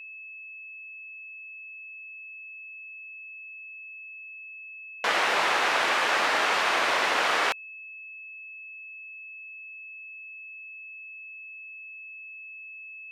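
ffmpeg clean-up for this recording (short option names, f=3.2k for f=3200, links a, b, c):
-af "bandreject=f=2.6k:w=30"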